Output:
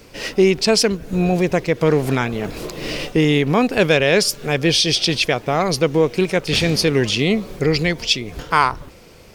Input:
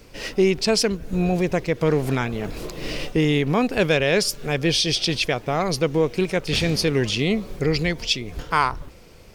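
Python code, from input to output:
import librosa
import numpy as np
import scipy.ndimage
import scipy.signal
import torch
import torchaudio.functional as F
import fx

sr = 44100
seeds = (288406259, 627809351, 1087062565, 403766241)

y = fx.low_shelf(x, sr, hz=68.0, db=-8.5)
y = y * librosa.db_to_amplitude(4.5)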